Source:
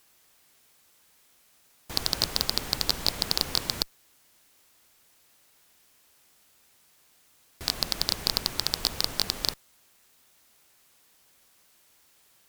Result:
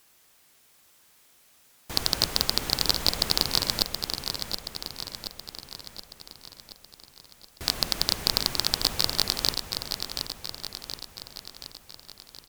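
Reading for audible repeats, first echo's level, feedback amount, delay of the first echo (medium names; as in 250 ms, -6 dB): 6, -7.0 dB, 56%, 725 ms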